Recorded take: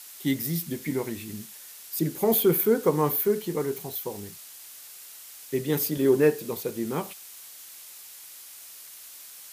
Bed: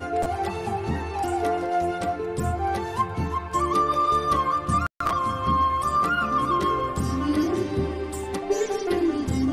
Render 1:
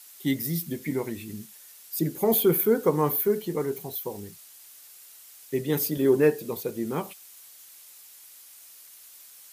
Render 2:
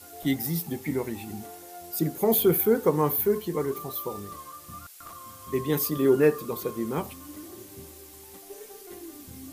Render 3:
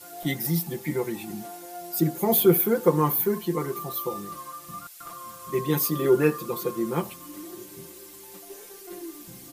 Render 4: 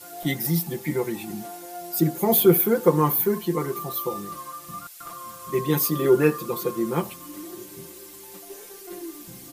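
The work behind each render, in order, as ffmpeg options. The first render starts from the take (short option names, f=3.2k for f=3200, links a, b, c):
-af "afftdn=nr=6:nf=-46"
-filter_complex "[1:a]volume=-20.5dB[a];[0:a][a]amix=inputs=2:normalize=0"
-af "lowshelf=f=71:g=-6,aecho=1:1:5.8:0.83"
-af "volume=2dB"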